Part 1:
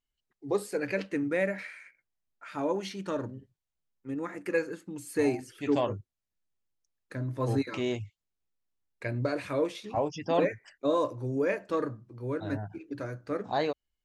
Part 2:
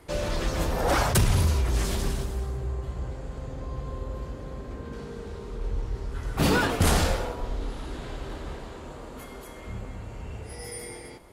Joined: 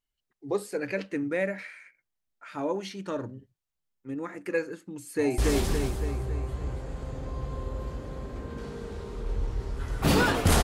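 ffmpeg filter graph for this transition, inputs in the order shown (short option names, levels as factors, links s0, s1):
-filter_complex "[0:a]apad=whole_dur=10.63,atrim=end=10.63,atrim=end=5.382[s0];[1:a]atrim=start=1.728:end=6.98[s1];[s0][s1]acrossfade=d=0.004:c1=hsin:c2=hsin,asplit=2[s2][s3];[s3]afade=t=in:st=5.02:d=0.01,afade=t=out:st=5.38:d=0.01,aecho=0:1:280|560|840|1120|1400|1680|1960|2240:0.841395|0.462767|0.254522|0.139987|0.0769929|0.0423461|0.0232904|0.0128097[s4];[s2][s4]amix=inputs=2:normalize=0"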